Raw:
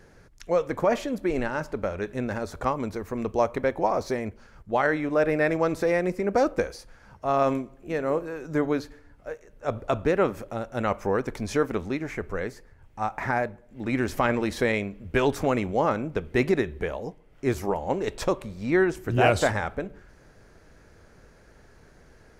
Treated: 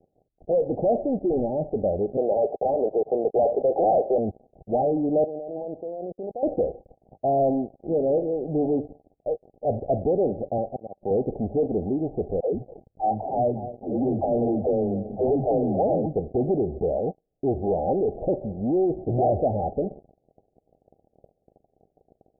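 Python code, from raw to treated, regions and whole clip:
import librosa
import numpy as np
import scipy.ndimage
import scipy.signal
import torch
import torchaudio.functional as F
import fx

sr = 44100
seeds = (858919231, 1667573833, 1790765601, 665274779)

y = fx.chain(x, sr, fx.highpass(hz=420.0, slope=24),
    fx.leveller(passes=3), at=(2.17, 4.18))
y = fx.chain(y, sr, fx.tilt_eq(slope=4.0),
    fx.level_steps(step_db=20), at=(5.24, 6.43))
y = fx.chain(y, sr, fx.peak_eq(hz=1500.0, db=10.5, octaves=0.47),
    fx.auto_swell(attack_ms=669.0),
    fx.band_squash(depth_pct=40), at=(10.58, 11.11))
y = fx.chain(y, sr, fx.dispersion(late='lows', ms=147.0, hz=320.0),
    fx.echo_single(ms=243, db=-17.0), at=(12.4, 16.06))
y = fx.leveller(y, sr, passes=5)
y = scipy.signal.sosfilt(scipy.signal.cheby1(8, 1.0, 790.0, 'lowpass', fs=sr, output='sos'), y)
y = fx.tilt_eq(y, sr, slope=2.5)
y = y * librosa.db_to_amplitude(-5.0)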